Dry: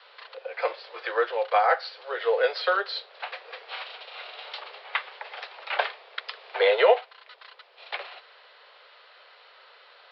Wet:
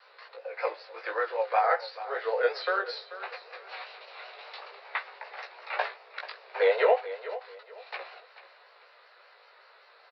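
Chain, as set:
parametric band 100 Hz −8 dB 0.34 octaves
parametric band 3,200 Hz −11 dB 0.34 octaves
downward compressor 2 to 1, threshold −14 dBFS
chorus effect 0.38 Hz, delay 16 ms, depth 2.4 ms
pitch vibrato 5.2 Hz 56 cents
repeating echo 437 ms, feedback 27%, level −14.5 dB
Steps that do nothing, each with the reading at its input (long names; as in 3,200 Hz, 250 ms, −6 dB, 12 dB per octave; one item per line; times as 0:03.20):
parametric band 100 Hz: nothing at its input below 360 Hz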